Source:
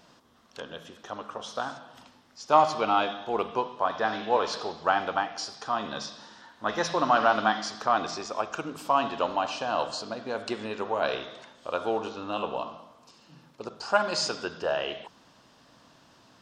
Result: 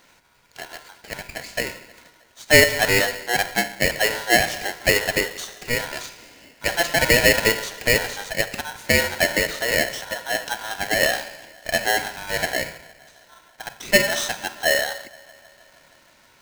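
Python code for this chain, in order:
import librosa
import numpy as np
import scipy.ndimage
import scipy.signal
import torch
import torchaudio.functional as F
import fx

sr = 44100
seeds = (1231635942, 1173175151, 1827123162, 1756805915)

y = fx.dynamic_eq(x, sr, hz=570.0, q=1.6, threshold_db=-40.0, ratio=4.0, max_db=8)
y = fx.echo_banded(y, sr, ms=157, feedback_pct=76, hz=500.0, wet_db=-23.5)
y = y * np.sign(np.sin(2.0 * np.pi * 1200.0 * np.arange(len(y)) / sr))
y = y * 10.0 ** (2.0 / 20.0)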